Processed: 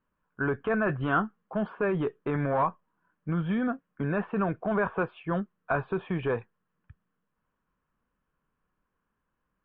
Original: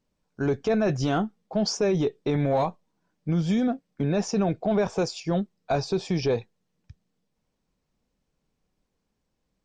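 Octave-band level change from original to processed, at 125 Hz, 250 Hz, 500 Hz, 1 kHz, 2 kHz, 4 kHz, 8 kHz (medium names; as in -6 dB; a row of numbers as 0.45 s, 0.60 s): -4.5 dB, -4.5 dB, -4.5 dB, +0.5 dB, +5.5 dB, -16.0 dB, no reading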